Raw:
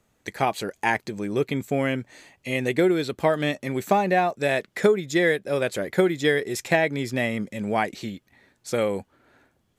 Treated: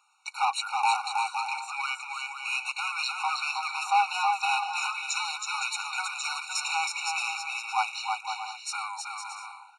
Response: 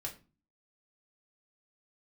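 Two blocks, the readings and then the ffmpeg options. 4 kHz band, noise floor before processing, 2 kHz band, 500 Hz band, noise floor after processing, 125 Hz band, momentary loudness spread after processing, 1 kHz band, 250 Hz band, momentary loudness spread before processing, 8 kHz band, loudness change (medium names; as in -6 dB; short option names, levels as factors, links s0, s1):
+3.0 dB, -69 dBFS, -2.5 dB, under -35 dB, -48 dBFS, under -40 dB, 8 LU, +1.0 dB, under -40 dB, 9 LU, +4.5 dB, -4.5 dB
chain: -filter_complex "[0:a]bandreject=f=60:t=h:w=6,bandreject=f=120:t=h:w=6,bandreject=f=180:t=h:w=6,bandreject=f=240:t=h:w=6,bandreject=f=300:t=h:w=6,bandreject=f=360:t=h:w=6,asplit=2[s0][s1];[s1]highpass=f=720:p=1,volume=12.6,asoftclip=type=tanh:threshold=0.501[s2];[s0][s2]amix=inputs=2:normalize=0,lowpass=f=7400:p=1,volume=0.501,aecho=1:1:320|512|627.2|696.3|737.8:0.631|0.398|0.251|0.158|0.1,aresample=22050,aresample=44100,afftfilt=real='re*eq(mod(floor(b*sr/1024/740),2),1)':imag='im*eq(mod(floor(b*sr/1024/740),2),1)':win_size=1024:overlap=0.75,volume=0.447"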